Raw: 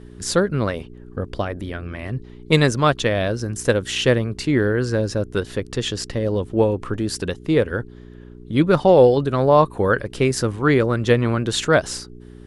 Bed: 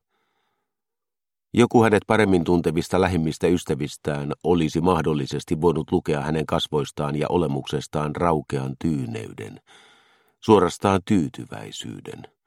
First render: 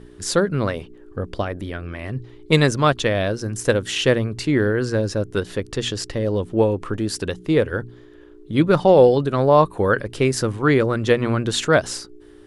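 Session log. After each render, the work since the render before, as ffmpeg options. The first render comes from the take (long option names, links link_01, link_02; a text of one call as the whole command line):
ffmpeg -i in.wav -af "bandreject=frequency=60:width_type=h:width=4,bandreject=frequency=120:width_type=h:width=4,bandreject=frequency=180:width_type=h:width=4,bandreject=frequency=240:width_type=h:width=4" out.wav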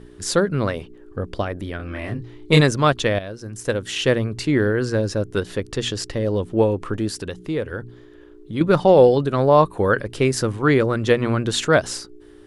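ffmpeg -i in.wav -filter_complex "[0:a]asettb=1/sr,asplit=3[link_01][link_02][link_03];[link_01]atrim=end=1.774[link_04];[link_02]atrim=start=1.77:end=2.61,asetpts=PTS-STARTPTS,afade=type=in:duration=0.004:curve=qsin,afade=type=out:start_time=0.836:duration=0.004:curve=qsin,asplit=2[link_05][link_06];[link_06]adelay=27,volume=-2.5dB[link_07];[link_05][link_07]amix=inputs=2:normalize=0,atrim=end_sample=37044[link_08];[link_03]atrim=start=2.606[link_09];[link_04][link_08]acrossfade=duration=0.004:curve1=hsin:curve2=qsin[link_10];[link_10][link_09]acrossfade=duration=0.004:curve1=qsin:curve2=hsin,asettb=1/sr,asplit=3[link_11][link_12][link_13];[link_11]atrim=end=7.094[link_14];[link_12]atrim=start=7.09:end=8.61,asetpts=PTS-STARTPTS,afade=type=in:duration=0.004:curve=qsin,afade=type=out:start_time=1.516:duration=0.004:curve=qsin,acompressor=threshold=-32dB:ratio=1.5:attack=3.2:release=140:knee=1:detection=peak[link_15];[link_13]atrim=start=8.606[link_16];[link_14][link_15]acrossfade=duration=0.004:curve1=hsin:curve2=qsin[link_17];[link_17][link_16]acrossfade=duration=0.004:curve1=qsin:curve2=hsin,asplit=2[link_18][link_19];[link_18]atrim=end=3.19,asetpts=PTS-STARTPTS,afade=type=out:start_time=3.186:duration=0.004:curve=hsin:silence=0.237137[link_20];[link_19]atrim=start=3.19,asetpts=PTS-STARTPTS,afade=type=in:duration=1.08:silence=0.237137[link_21];[link_20][link_21]concat=n=2:v=0:a=1" out.wav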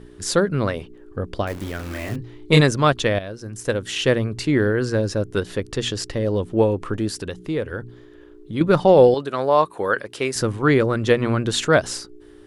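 ffmpeg -i in.wav -filter_complex "[0:a]asettb=1/sr,asplit=3[link_01][link_02][link_03];[link_01]atrim=end=1.474[link_04];[link_02]atrim=start=1.47:end=2.16,asetpts=PTS-STARTPTS,afade=type=in:duration=0.004:curve=qsin,afade=type=out:start_time=0.686:duration=0.004:curve=qsin,acrusher=bits=7:dc=4:mix=0:aa=0.000001[link_05];[link_03]atrim=start=2.156[link_06];[link_04][link_05]acrossfade=duration=0.004:curve1=hsin:curve2=qsin[link_07];[link_07][link_06]acrossfade=duration=0.004:curve1=qsin:curve2=hsin,asettb=1/sr,asplit=3[link_08][link_09][link_10];[link_08]atrim=end=9.144[link_11];[link_09]atrim=start=9.14:end=10.36,asetpts=PTS-STARTPTS,afade=type=in:duration=0.004:curve=qsin,afade=type=out:start_time=1.216:duration=0.004:curve=qsin,highpass=frequency=570:poles=1[link_12];[link_10]atrim=start=10.356[link_13];[link_11][link_12]acrossfade=duration=0.004:curve1=hsin:curve2=qsin[link_14];[link_14][link_13]acrossfade=duration=0.004:curve1=qsin:curve2=hsin" out.wav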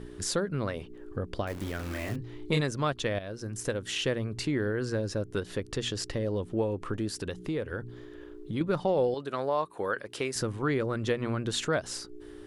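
ffmpeg -i in.wav -af "acompressor=threshold=-35dB:ratio=2" out.wav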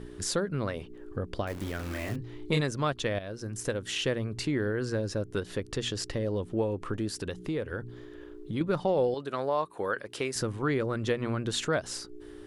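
ffmpeg -i in.wav -af anull out.wav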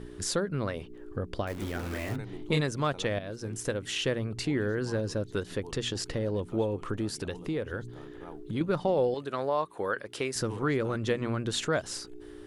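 ffmpeg -i in.wav -i bed.wav -filter_complex "[1:a]volume=-27dB[link_01];[0:a][link_01]amix=inputs=2:normalize=0" out.wav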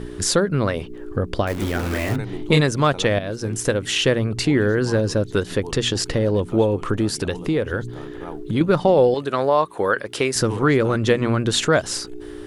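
ffmpeg -i in.wav -af "volume=11dB" out.wav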